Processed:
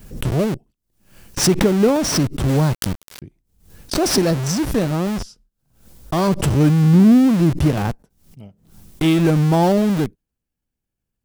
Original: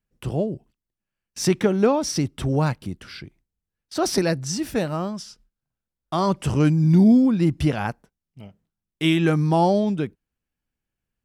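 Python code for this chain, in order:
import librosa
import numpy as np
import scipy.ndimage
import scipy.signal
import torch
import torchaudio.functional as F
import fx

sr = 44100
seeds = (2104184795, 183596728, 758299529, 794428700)

p1 = fx.peak_eq(x, sr, hz=1900.0, db=-7.5, octaves=2.4)
p2 = fx.schmitt(p1, sr, flips_db=-31.5)
p3 = p1 + (p2 * 10.0 ** (-4.5 / 20.0))
p4 = fx.quant_dither(p3, sr, seeds[0], bits=6, dither='none', at=(2.48, 3.22))
p5 = fx.pre_swell(p4, sr, db_per_s=100.0)
y = p5 * 10.0 ** (2.5 / 20.0)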